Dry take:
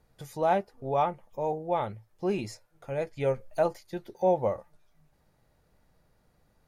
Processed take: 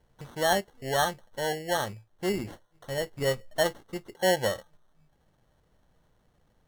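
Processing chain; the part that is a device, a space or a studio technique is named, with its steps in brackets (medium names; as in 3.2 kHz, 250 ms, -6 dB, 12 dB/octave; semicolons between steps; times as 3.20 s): crushed at another speed (playback speed 0.5×; sample-and-hold 36×; playback speed 2×)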